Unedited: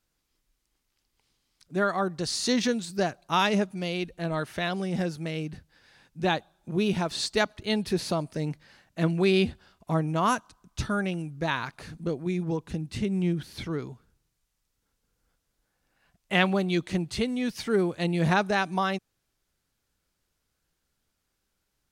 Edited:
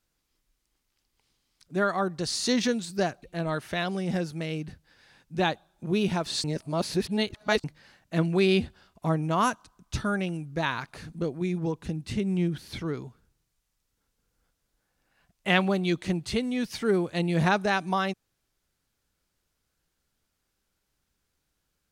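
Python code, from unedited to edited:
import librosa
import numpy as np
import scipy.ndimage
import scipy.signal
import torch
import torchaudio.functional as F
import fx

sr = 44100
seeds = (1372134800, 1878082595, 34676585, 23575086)

y = fx.edit(x, sr, fx.cut(start_s=3.23, length_s=0.85),
    fx.reverse_span(start_s=7.29, length_s=1.2), tone=tone)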